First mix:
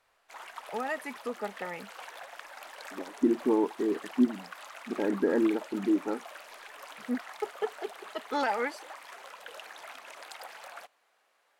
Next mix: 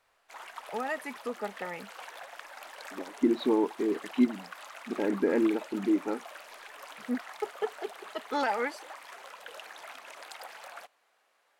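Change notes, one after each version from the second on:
second voice: remove linear-phase brick-wall low-pass 2,000 Hz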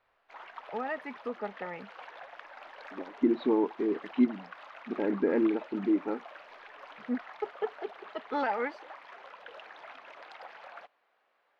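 master: add high-frequency loss of the air 280 metres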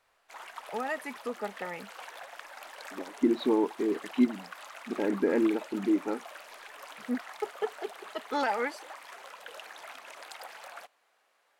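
master: remove high-frequency loss of the air 280 metres

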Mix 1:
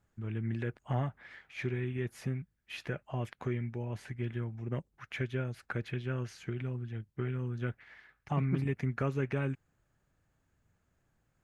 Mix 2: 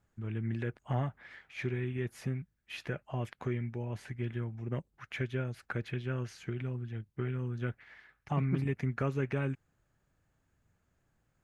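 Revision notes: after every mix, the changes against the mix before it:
nothing changed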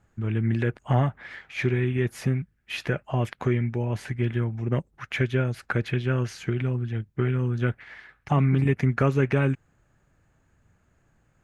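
first voice +10.5 dB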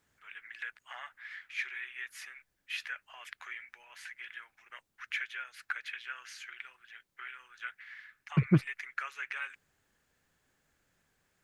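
first voice: add four-pole ladder high-pass 1,300 Hz, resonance 30%
second voice +10.5 dB

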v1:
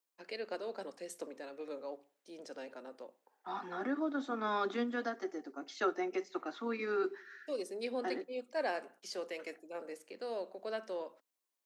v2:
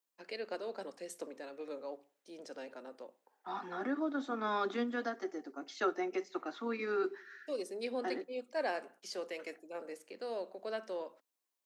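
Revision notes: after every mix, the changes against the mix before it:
nothing changed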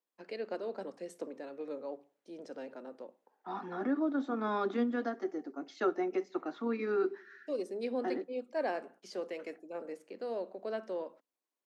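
master: add spectral tilt −2.5 dB per octave

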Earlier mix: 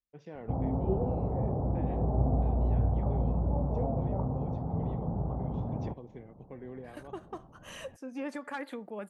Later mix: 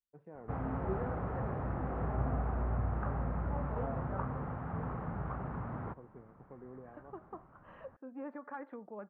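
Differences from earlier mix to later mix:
background: remove Butterworth low-pass 870 Hz 36 dB per octave
master: add transistor ladder low-pass 1,600 Hz, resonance 30%

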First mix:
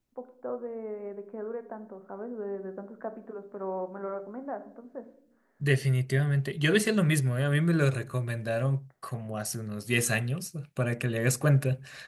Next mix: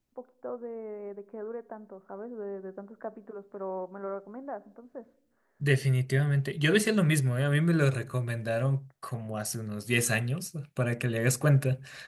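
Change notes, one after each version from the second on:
first voice: send −10.5 dB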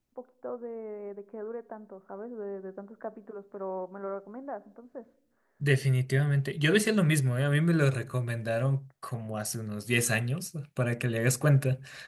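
nothing changed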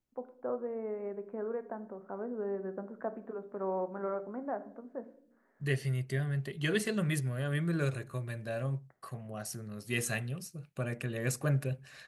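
first voice: send +9.0 dB
second voice −7.0 dB

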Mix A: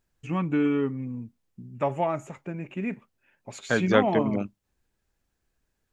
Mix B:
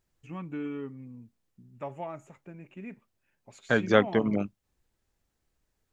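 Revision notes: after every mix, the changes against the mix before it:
first voice −11.5 dB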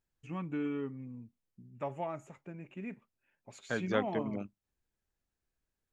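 second voice −10.5 dB

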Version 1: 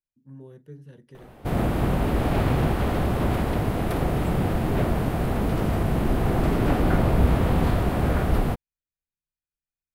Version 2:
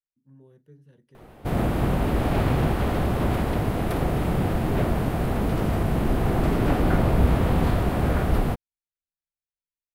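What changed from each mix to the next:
speech −8.5 dB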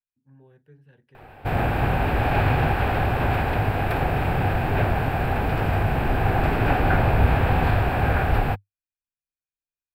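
master: add thirty-one-band graphic EQ 100 Hz +6 dB, 200 Hz −8 dB, 315 Hz −4 dB, 800 Hz +9 dB, 1,600 Hz +10 dB, 2,500 Hz +10 dB, 6,300 Hz −10 dB, 10,000 Hz −10 dB

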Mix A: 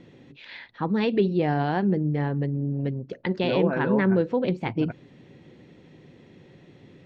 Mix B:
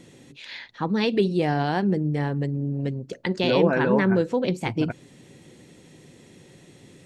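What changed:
second voice +4.0 dB
master: remove high-frequency loss of the air 240 metres

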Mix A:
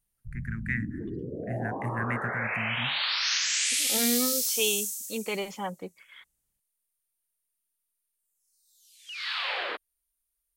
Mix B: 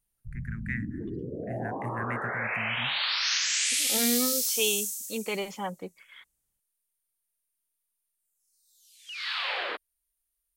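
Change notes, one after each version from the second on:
first voice −3.5 dB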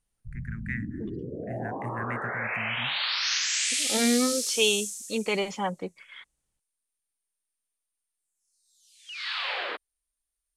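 second voice +4.5 dB
master: add low-pass filter 10,000 Hz 24 dB per octave

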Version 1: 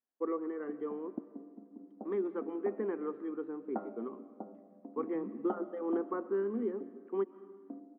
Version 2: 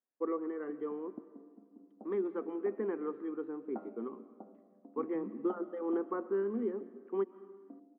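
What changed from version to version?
background −6.5 dB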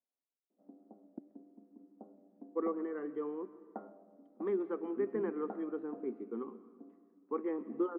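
first voice: entry +2.35 s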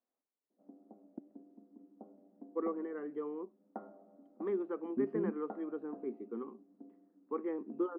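second voice +12.0 dB
reverb: off

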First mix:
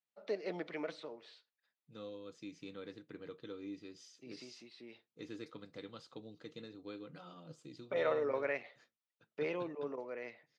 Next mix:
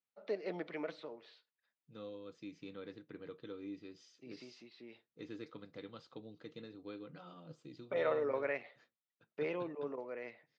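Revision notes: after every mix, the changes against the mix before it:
master: add high-frequency loss of the air 110 metres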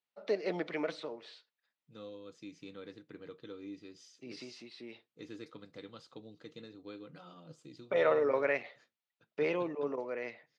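first voice +5.5 dB
master: remove high-frequency loss of the air 110 metres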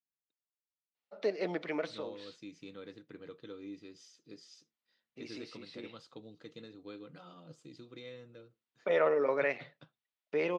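first voice: entry +0.95 s

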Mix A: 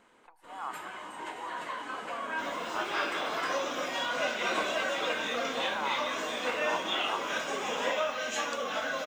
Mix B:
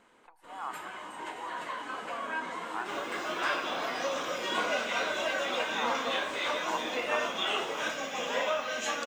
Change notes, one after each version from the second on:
second sound: entry +0.50 s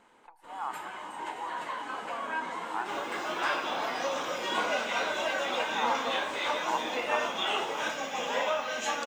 master: add parametric band 860 Hz +7.5 dB 0.24 octaves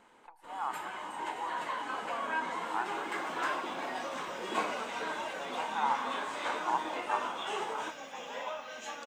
second sound −10.5 dB

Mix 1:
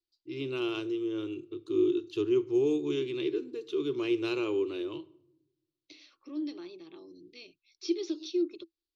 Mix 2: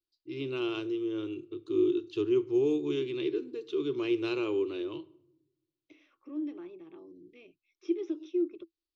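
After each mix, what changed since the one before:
second voice: add moving average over 10 samples
master: add high-frequency loss of the air 61 metres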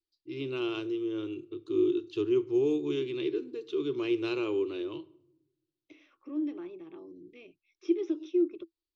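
second voice +3.0 dB

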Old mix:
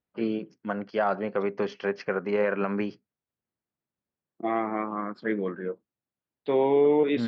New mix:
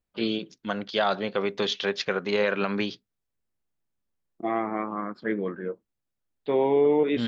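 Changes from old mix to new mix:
first voice: remove moving average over 12 samples
master: remove high-pass filter 100 Hz

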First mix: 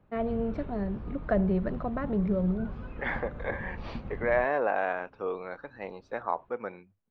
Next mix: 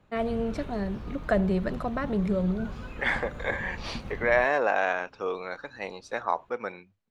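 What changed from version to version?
master: remove head-to-tape spacing loss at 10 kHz 35 dB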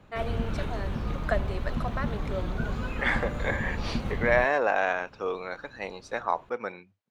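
first voice: add high-pass filter 640 Hz 12 dB per octave
background +7.5 dB

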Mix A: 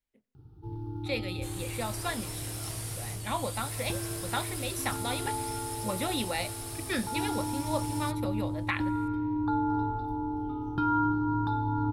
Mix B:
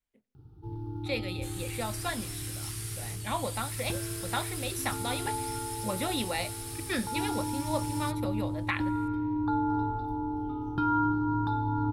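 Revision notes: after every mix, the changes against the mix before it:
second sound: add inverse Chebyshev high-pass filter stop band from 470 Hz, stop band 50 dB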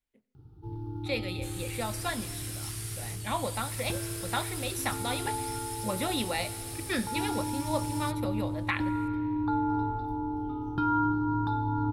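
speech: send +7.5 dB

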